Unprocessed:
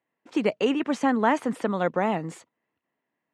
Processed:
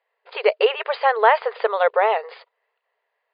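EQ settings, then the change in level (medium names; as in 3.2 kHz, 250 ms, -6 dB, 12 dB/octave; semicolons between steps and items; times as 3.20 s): brick-wall FIR band-pass 400–5000 Hz; +8.0 dB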